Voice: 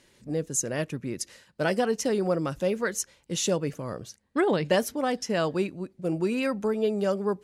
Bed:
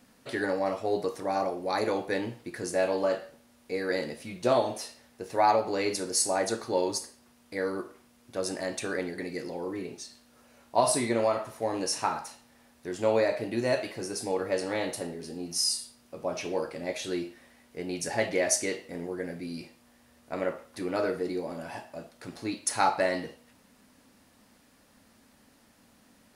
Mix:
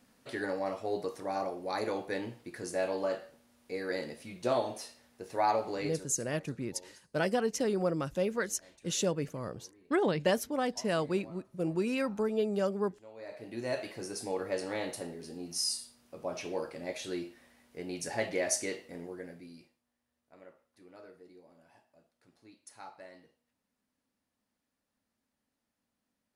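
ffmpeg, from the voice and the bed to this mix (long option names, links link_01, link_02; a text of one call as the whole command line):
ffmpeg -i stem1.wav -i stem2.wav -filter_complex "[0:a]adelay=5550,volume=-4.5dB[link_01];[1:a]volume=16.5dB,afade=type=out:start_time=5.7:duration=0.46:silence=0.0841395,afade=type=in:start_time=13.16:duration=0.74:silence=0.0794328,afade=type=out:start_time=18.79:duration=1.02:silence=0.112202[link_02];[link_01][link_02]amix=inputs=2:normalize=0" out.wav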